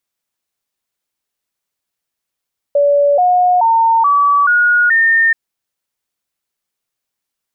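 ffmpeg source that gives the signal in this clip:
-f lavfi -i "aevalsrc='0.398*clip(min(mod(t,0.43),0.43-mod(t,0.43))/0.005,0,1)*sin(2*PI*573*pow(2,floor(t/0.43)/3)*mod(t,0.43))':d=2.58:s=44100"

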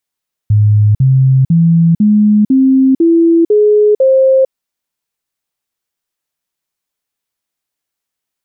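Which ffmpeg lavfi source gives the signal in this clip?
-f lavfi -i "aevalsrc='0.562*clip(min(mod(t,0.5),0.45-mod(t,0.5))/0.005,0,1)*sin(2*PI*105*pow(2,floor(t/0.5)/3)*mod(t,0.5))':d=4:s=44100"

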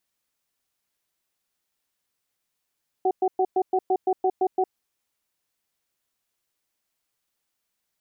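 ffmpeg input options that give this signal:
-f lavfi -i "aevalsrc='0.0891*(sin(2*PI*376*t)+sin(2*PI*749*t))*clip(min(mod(t,0.17),0.06-mod(t,0.17))/0.005,0,1)':d=1.69:s=44100"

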